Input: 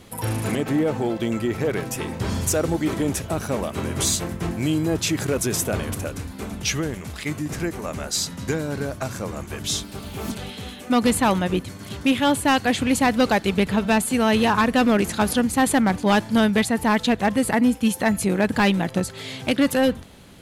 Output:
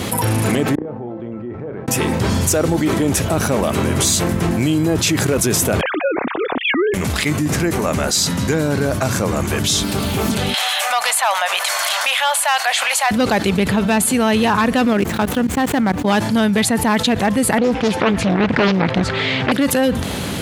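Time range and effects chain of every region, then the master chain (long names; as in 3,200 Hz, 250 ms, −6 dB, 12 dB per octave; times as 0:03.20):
0:00.75–0:01.88: low-pass filter 1,100 Hz + gate with flip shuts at −23 dBFS, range −38 dB + flutter between parallel walls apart 5.6 metres, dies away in 0.2 s
0:05.81–0:06.94: three sine waves on the formant tracks + one half of a high-frequency compander decoder only
0:10.54–0:13.11: elliptic high-pass filter 650 Hz, stop band 50 dB + upward compression, threshold −24 dBFS
0:14.93–0:16.08: running median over 9 samples + output level in coarse steps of 21 dB
0:17.58–0:19.52: low-pass filter 3,100 Hz + parametric band 1,900 Hz +4.5 dB 2.2 octaves + highs frequency-modulated by the lows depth 0.94 ms
whole clip: high-pass filter 67 Hz; envelope flattener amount 70%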